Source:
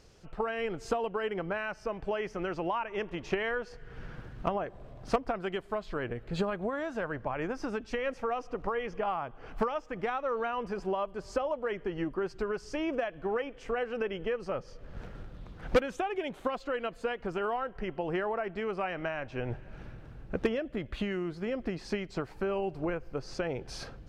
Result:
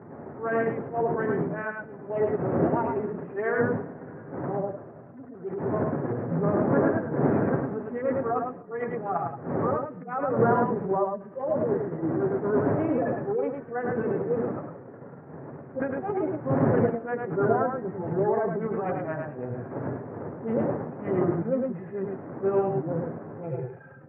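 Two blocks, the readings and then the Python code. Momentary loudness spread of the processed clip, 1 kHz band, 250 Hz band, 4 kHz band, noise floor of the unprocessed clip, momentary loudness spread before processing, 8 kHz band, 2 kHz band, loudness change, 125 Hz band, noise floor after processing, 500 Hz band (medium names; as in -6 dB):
12 LU, +4.5 dB, +8.5 dB, under -25 dB, -51 dBFS, 8 LU, no reading, +0.5 dB, +6.5 dB, +11.0 dB, -45 dBFS, +6.5 dB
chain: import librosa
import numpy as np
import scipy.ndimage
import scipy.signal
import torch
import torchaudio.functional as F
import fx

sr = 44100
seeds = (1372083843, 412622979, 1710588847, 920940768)

p1 = fx.hpss_only(x, sr, part='harmonic')
p2 = fx.dmg_wind(p1, sr, seeds[0], corner_hz=440.0, level_db=-39.0)
p3 = fx.level_steps(p2, sr, step_db=18)
p4 = p2 + F.gain(torch.from_numpy(p3), 2.5).numpy()
p5 = fx.transient(p4, sr, attack_db=-7, sustain_db=9)
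p6 = scipy.signal.sosfilt(scipy.signal.ellip(3, 1.0, 40, [120.0, 1800.0], 'bandpass', fs=sr, output='sos'), p5)
p7 = fx.chorus_voices(p6, sr, voices=6, hz=1.2, base_ms=10, depth_ms=3.0, mix_pct=30)
p8 = fx.air_absorb(p7, sr, metres=360.0)
p9 = p8 + fx.echo_single(p8, sr, ms=106, db=-3.0, dry=0)
p10 = fx.upward_expand(p9, sr, threshold_db=-38.0, expansion=1.5)
y = F.gain(torch.from_numpy(p10), 7.0).numpy()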